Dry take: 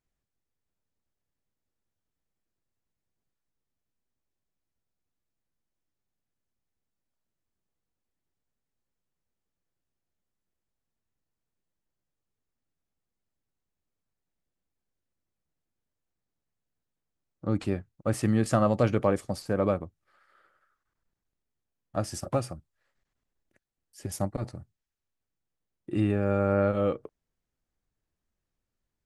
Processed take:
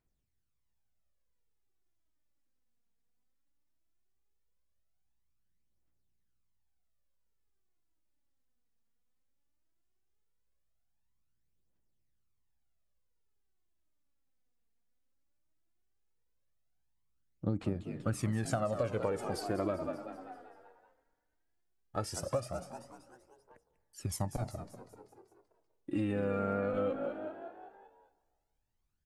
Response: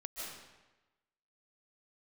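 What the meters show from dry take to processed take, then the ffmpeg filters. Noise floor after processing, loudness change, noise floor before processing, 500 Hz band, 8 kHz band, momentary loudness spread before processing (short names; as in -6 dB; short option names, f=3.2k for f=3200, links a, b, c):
-78 dBFS, -8.0 dB, under -85 dBFS, -6.5 dB, -3.5 dB, 14 LU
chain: -filter_complex "[0:a]asplit=7[a][b][c][d][e][f][g];[b]adelay=193,afreqshift=58,volume=-12dB[h];[c]adelay=386,afreqshift=116,volume=-17.4dB[i];[d]adelay=579,afreqshift=174,volume=-22.7dB[j];[e]adelay=772,afreqshift=232,volume=-28.1dB[k];[f]adelay=965,afreqshift=290,volume=-33.4dB[l];[g]adelay=1158,afreqshift=348,volume=-38.8dB[m];[a][h][i][j][k][l][m]amix=inputs=7:normalize=0,aphaser=in_gain=1:out_gain=1:delay=4.4:decay=0.6:speed=0.17:type=triangular,asplit=2[n][o];[1:a]atrim=start_sample=2205,asetrate=31752,aresample=44100[p];[o][p]afir=irnorm=-1:irlink=0,volume=-21dB[q];[n][q]amix=inputs=2:normalize=0,acompressor=threshold=-24dB:ratio=10,volume=-4.5dB"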